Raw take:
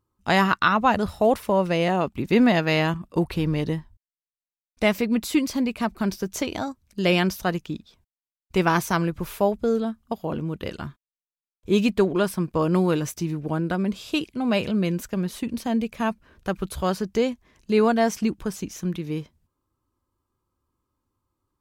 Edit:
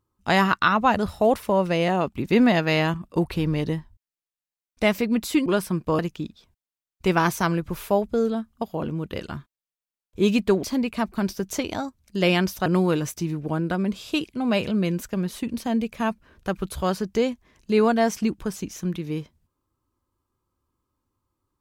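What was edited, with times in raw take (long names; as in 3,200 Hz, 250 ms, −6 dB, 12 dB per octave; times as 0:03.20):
0:05.46–0:07.49: swap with 0:12.13–0:12.66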